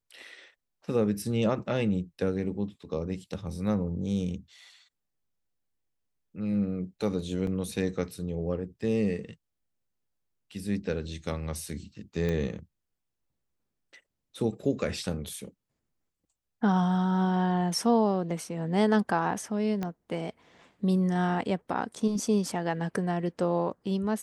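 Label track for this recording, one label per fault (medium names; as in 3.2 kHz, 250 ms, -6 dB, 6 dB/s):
7.470000	7.470000	dropout 2.4 ms
12.290000	12.290000	pop -19 dBFS
19.830000	19.830000	pop -19 dBFS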